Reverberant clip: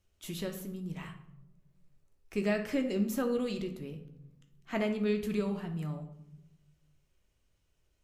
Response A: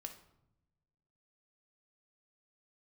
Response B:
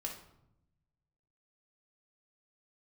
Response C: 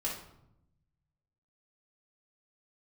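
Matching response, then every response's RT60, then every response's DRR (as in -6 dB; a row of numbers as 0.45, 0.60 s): A; 0.85, 0.80, 0.80 s; 4.5, -0.5, -5.5 dB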